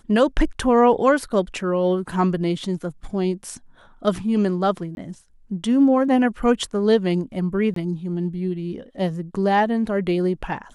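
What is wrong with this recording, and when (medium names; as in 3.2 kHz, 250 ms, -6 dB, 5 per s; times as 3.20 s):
4.95–4.97 s: dropout 21 ms
7.74–7.76 s: dropout 23 ms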